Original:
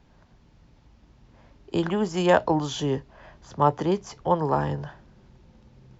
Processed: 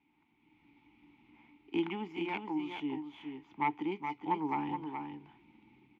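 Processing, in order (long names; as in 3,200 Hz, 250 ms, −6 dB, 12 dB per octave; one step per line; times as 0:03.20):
stylus tracing distortion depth 0.13 ms
flat-topped bell 2,200 Hz +12 dB
automatic gain control gain up to 9 dB
formant filter u
on a send: single-tap delay 423 ms −6.5 dB
on the sum: level −3.5 dB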